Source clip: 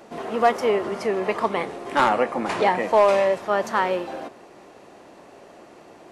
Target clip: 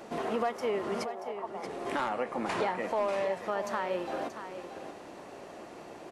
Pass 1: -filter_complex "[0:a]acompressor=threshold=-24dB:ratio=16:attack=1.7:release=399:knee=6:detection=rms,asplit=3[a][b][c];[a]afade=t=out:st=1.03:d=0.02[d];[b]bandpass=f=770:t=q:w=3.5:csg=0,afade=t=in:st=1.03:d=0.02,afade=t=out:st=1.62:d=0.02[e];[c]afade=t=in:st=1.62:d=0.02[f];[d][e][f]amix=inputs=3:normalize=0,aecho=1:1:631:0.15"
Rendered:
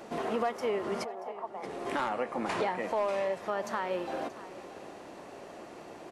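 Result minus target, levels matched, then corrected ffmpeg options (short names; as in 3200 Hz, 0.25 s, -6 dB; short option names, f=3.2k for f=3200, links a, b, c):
echo-to-direct -6.5 dB
-filter_complex "[0:a]acompressor=threshold=-24dB:ratio=16:attack=1.7:release=399:knee=6:detection=rms,asplit=3[a][b][c];[a]afade=t=out:st=1.03:d=0.02[d];[b]bandpass=f=770:t=q:w=3.5:csg=0,afade=t=in:st=1.03:d=0.02,afade=t=out:st=1.62:d=0.02[e];[c]afade=t=in:st=1.62:d=0.02[f];[d][e][f]amix=inputs=3:normalize=0,aecho=1:1:631:0.316"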